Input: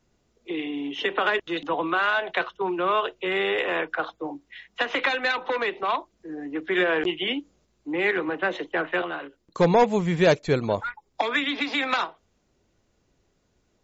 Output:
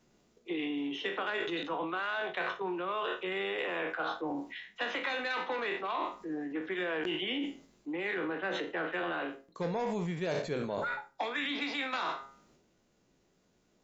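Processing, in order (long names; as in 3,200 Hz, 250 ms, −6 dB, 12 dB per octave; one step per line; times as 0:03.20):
peak hold with a decay on every bin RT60 0.33 s
low shelf with overshoot 120 Hz −7.5 dB, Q 1.5
hum removal 136.2 Hz, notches 15
in parallel at 0 dB: speech leveller 2 s
on the sum: transient designer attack +3 dB, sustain +7 dB
reversed playback
downward compressor 6 to 1, threshold −23 dBFS, peak gain reduction 16 dB
reversed playback
level −9 dB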